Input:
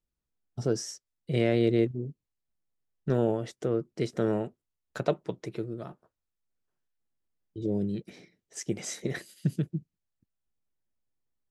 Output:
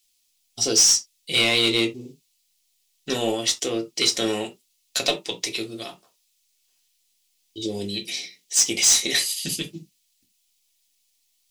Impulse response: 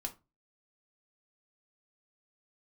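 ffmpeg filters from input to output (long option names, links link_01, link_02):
-filter_complex "[0:a]aexciter=amount=8.2:drive=7.5:freq=2300,asplit=2[link_01][link_02];[link_02]highpass=frequency=720:poles=1,volume=18dB,asoftclip=type=tanh:threshold=-0.5dB[link_03];[link_01][link_03]amix=inputs=2:normalize=0,lowpass=frequency=6600:poles=1,volume=-6dB[link_04];[1:a]atrim=start_sample=2205,atrim=end_sample=3969[link_05];[link_04][link_05]afir=irnorm=-1:irlink=0,volume=-4dB"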